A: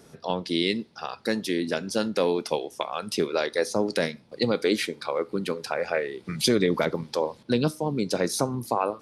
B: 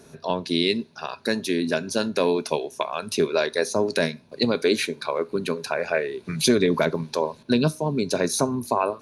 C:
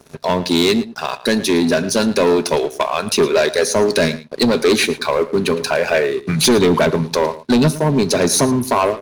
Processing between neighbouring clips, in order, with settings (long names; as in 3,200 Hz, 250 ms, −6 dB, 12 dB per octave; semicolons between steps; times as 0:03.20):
EQ curve with evenly spaced ripples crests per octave 1.5, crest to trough 7 dB; level +2 dB
leveller curve on the samples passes 3; slap from a distant wall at 19 metres, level −16 dB